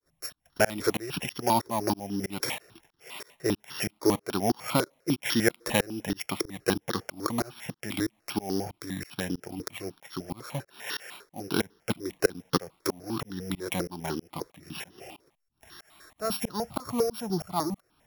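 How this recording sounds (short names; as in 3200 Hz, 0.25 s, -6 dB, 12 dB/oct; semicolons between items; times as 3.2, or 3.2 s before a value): a buzz of ramps at a fixed pitch in blocks of 8 samples; tremolo saw up 3.1 Hz, depth 100%; notches that jump at a steady rate 10 Hz 770–2300 Hz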